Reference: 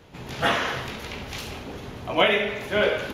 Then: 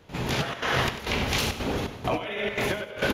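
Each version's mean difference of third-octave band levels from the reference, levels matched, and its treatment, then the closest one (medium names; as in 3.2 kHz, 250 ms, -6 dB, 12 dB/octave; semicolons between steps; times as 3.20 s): 7.5 dB: compressor with a negative ratio -31 dBFS, ratio -1; trance gate ".xxxxx.xxx." 169 bpm -12 dB; on a send: feedback delay 96 ms, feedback 28%, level -12 dB; on the sum: trim +4 dB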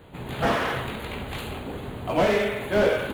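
3.5 dB: in parallel at -8 dB: sample-rate reducer 3.8 kHz, jitter 0%; on the sum: Butterworth band-stop 5.5 kHz, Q 1.7; slew-rate limiter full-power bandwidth 100 Hz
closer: second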